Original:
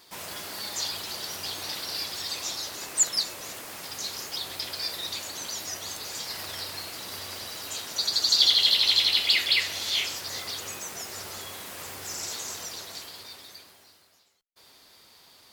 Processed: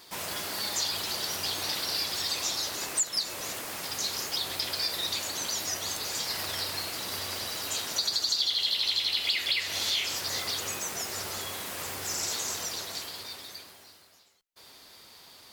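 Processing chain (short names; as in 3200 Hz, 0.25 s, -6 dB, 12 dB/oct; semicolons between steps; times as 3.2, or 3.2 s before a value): compressor 6:1, threshold -28 dBFS, peak gain reduction 12.5 dB; gain +3 dB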